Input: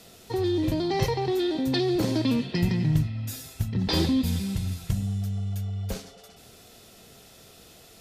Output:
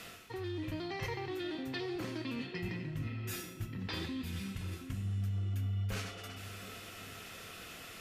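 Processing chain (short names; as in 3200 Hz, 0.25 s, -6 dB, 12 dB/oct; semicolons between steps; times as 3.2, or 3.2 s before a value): reverse; compressor 5:1, threshold -39 dBFS, peak gain reduction 19.5 dB; reverse; band shelf 1800 Hz +10 dB; resonator 100 Hz, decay 0.82 s, harmonics odd, mix 70%; narrowing echo 0.722 s, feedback 60%, band-pass 350 Hz, level -8.5 dB; gain +9 dB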